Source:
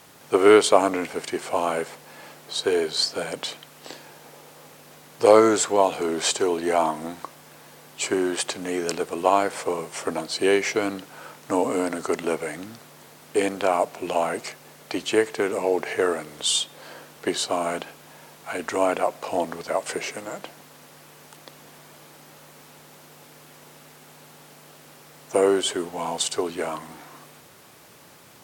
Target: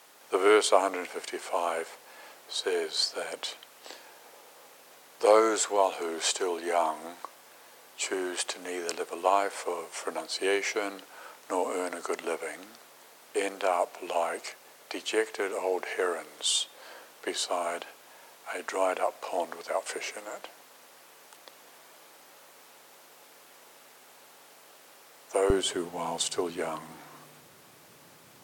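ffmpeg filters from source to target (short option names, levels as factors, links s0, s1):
-af "asetnsamples=n=441:p=0,asendcmd='25.5 highpass f 80',highpass=430,volume=0.596"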